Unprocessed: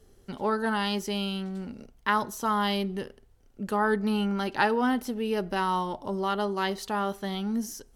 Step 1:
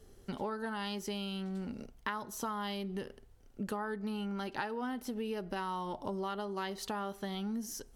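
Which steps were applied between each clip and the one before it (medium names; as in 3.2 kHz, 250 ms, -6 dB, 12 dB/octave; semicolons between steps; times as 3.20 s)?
compression 10:1, threshold -34 dBFS, peak gain reduction 15.5 dB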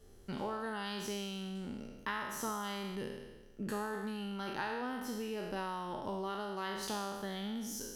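spectral sustain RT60 1.25 s; trim -3.5 dB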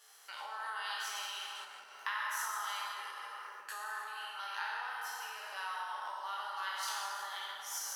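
plate-style reverb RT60 2.9 s, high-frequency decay 0.4×, DRR -2.5 dB; compression 6:1, threshold -41 dBFS, peak gain reduction 11.5 dB; high-pass 950 Hz 24 dB/octave; trim +8.5 dB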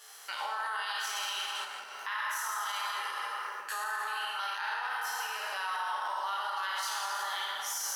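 peak limiter -34.5 dBFS, peak gain reduction 11 dB; trim +9 dB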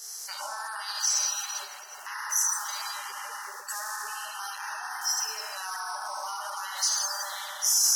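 coarse spectral quantiser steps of 30 dB; resonant high shelf 4.2 kHz +10.5 dB, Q 3; saturation -12 dBFS, distortion -25 dB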